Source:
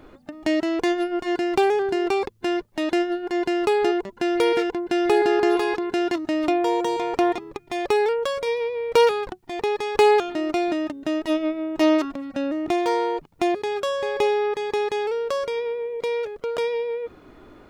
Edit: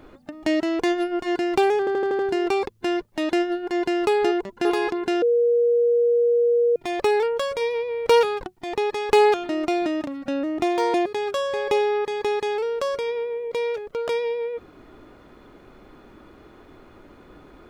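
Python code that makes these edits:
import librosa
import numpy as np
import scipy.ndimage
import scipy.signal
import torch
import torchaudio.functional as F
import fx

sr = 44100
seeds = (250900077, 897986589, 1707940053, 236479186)

y = fx.edit(x, sr, fx.stutter(start_s=1.79, slice_s=0.08, count=6),
    fx.cut(start_s=4.25, length_s=1.26),
    fx.bleep(start_s=6.08, length_s=1.54, hz=475.0, db=-15.5),
    fx.cut(start_s=10.93, length_s=1.22),
    fx.cut(start_s=13.02, length_s=0.41), tone=tone)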